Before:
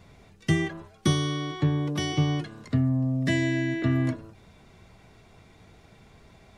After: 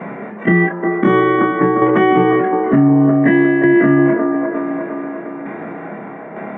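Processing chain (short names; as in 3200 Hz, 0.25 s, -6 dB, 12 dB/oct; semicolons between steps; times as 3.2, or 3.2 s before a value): short-time reversal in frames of 59 ms; elliptic band-pass 190–1900 Hz, stop band 40 dB; tremolo saw down 1.1 Hz, depth 70%; band-limited delay 0.354 s, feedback 52%, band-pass 670 Hz, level -5.5 dB; maximiser +28.5 dB; three-band squash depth 40%; gain -2.5 dB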